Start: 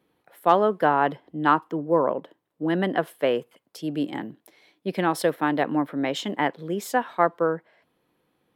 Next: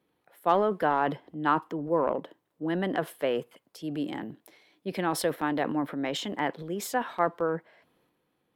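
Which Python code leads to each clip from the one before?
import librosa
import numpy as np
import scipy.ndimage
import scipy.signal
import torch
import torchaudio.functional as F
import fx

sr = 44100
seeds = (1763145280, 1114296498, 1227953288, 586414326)

y = fx.transient(x, sr, attack_db=0, sustain_db=7)
y = F.gain(torch.from_numpy(y), -5.5).numpy()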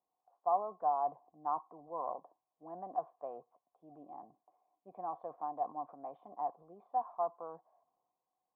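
y = fx.formant_cascade(x, sr, vowel='a')
y = fx.peak_eq(y, sr, hz=2400.0, db=-12.0, octaves=0.92)
y = F.gain(torch.from_numpy(y), 1.0).numpy()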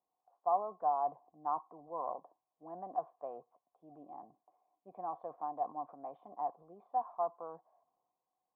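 y = x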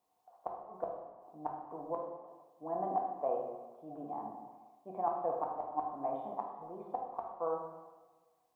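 y = fx.gate_flip(x, sr, shuts_db=-30.0, range_db=-33)
y = fx.rev_plate(y, sr, seeds[0], rt60_s=1.2, hf_ratio=0.85, predelay_ms=0, drr_db=-0.5)
y = F.gain(torch.from_numpy(y), 7.5).numpy()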